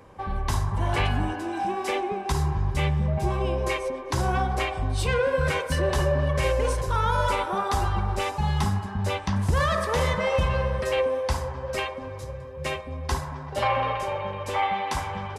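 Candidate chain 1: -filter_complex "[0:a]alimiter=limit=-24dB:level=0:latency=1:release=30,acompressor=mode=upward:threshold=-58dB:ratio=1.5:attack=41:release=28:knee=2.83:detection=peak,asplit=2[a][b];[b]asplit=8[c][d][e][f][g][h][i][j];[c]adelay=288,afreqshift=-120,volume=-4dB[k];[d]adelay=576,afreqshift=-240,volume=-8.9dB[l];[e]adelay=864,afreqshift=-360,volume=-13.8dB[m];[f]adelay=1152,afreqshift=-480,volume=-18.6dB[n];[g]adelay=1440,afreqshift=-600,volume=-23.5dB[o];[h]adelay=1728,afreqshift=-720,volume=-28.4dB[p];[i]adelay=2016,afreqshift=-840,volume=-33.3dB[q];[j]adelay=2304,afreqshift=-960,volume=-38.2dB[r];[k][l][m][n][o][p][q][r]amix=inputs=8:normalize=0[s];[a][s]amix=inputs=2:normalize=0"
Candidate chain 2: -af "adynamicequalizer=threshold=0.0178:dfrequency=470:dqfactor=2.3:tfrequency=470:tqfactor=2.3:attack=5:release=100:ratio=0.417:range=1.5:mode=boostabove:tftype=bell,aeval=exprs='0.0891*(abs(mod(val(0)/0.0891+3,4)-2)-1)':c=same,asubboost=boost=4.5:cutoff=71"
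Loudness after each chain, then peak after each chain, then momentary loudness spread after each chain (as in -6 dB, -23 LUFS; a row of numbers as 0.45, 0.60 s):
-30.5, -26.5 LUFS; -17.5, -11.5 dBFS; 3, 6 LU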